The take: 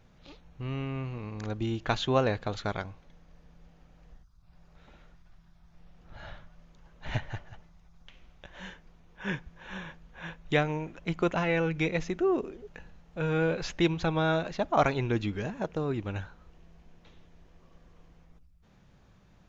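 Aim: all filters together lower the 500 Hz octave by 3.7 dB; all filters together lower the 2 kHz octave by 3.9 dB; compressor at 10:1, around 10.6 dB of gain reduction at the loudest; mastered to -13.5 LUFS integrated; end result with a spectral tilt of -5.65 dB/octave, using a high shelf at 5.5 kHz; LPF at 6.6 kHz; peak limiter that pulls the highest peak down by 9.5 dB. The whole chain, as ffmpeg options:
-af "lowpass=6600,equalizer=f=500:t=o:g=-4.5,equalizer=f=2000:t=o:g=-4,highshelf=f=5500:g=-7.5,acompressor=threshold=0.0251:ratio=10,volume=26.6,alimiter=limit=0.75:level=0:latency=1"

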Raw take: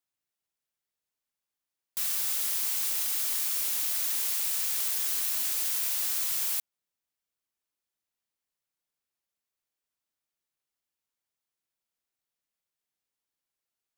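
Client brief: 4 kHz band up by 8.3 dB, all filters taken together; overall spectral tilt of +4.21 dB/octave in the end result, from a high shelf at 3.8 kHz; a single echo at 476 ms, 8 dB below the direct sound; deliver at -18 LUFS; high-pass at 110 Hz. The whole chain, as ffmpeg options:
-af "highpass=110,highshelf=f=3800:g=5,equalizer=f=4000:t=o:g=7,aecho=1:1:476:0.398,volume=1.33"

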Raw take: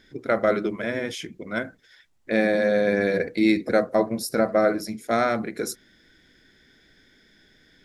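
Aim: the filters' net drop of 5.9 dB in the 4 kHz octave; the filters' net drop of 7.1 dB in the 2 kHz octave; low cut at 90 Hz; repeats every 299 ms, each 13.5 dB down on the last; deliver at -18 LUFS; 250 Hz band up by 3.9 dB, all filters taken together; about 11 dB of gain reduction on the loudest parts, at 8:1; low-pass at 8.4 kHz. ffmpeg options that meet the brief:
-af "highpass=90,lowpass=8400,equalizer=f=250:t=o:g=5.5,equalizer=f=2000:t=o:g=-8.5,equalizer=f=4000:t=o:g=-5,acompressor=threshold=0.0631:ratio=8,aecho=1:1:299|598:0.211|0.0444,volume=3.98"

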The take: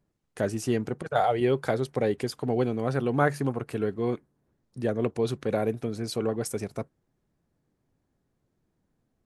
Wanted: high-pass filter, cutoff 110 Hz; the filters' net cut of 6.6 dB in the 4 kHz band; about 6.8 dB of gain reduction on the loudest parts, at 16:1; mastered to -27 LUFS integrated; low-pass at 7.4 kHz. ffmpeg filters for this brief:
-af "highpass=110,lowpass=7400,equalizer=f=4000:t=o:g=-8,acompressor=threshold=0.0501:ratio=16,volume=2.11"

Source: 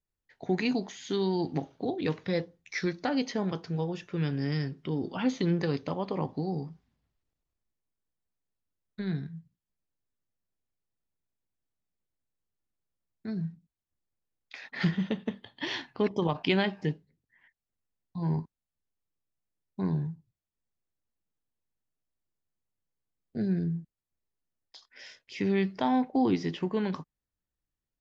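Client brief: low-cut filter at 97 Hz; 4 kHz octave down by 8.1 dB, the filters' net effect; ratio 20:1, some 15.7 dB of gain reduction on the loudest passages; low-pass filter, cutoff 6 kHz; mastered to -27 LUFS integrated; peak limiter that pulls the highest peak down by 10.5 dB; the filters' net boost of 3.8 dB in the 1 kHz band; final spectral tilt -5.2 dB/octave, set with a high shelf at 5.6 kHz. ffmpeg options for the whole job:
-af "highpass=97,lowpass=6000,equalizer=f=1000:t=o:g=5.5,equalizer=f=4000:t=o:g=-9,highshelf=f=5600:g=-5.5,acompressor=threshold=0.0158:ratio=20,volume=7.5,alimiter=limit=0.158:level=0:latency=1"

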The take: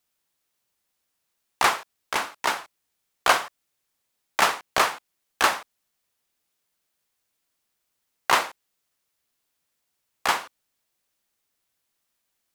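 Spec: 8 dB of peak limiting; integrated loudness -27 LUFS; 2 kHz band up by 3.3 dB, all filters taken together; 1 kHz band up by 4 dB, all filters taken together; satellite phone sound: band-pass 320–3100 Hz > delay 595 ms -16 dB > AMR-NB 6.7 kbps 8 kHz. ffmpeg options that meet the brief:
-af "equalizer=f=1000:t=o:g=4,equalizer=f=2000:t=o:g=3.5,alimiter=limit=0.398:level=0:latency=1,highpass=320,lowpass=3100,aecho=1:1:595:0.158,volume=1.19" -ar 8000 -c:a libopencore_amrnb -b:a 6700

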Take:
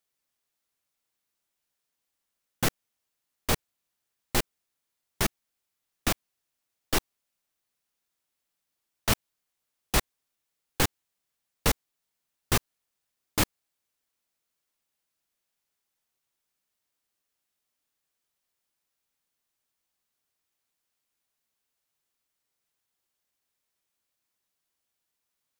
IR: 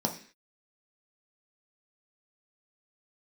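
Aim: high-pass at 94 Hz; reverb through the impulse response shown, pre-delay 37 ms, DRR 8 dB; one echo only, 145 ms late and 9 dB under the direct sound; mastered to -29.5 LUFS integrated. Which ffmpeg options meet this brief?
-filter_complex "[0:a]highpass=94,aecho=1:1:145:0.355,asplit=2[s0][s1];[1:a]atrim=start_sample=2205,adelay=37[s2];[s1][s2]afir=irnorm=-1:irlink=0,volume=0.178[s3];[s0][s3]amix=inputs=2:normalize=0,volume=1.06"

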